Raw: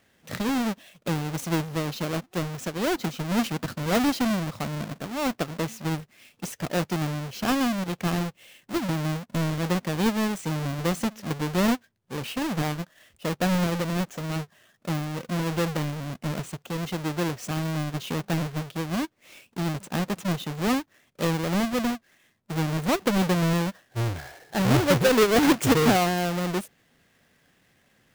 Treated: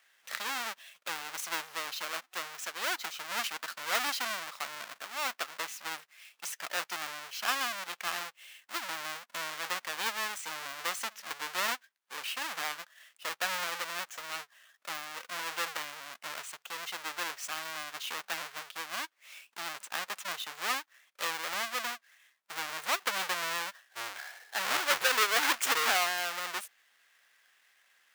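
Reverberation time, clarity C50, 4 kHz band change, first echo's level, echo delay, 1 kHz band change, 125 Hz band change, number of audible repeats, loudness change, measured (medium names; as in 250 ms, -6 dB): no reverb, no reverb, -0.5 dB, no echo, no echo, -4.5 dB, -36.5 dB, no echo, -7.0 dB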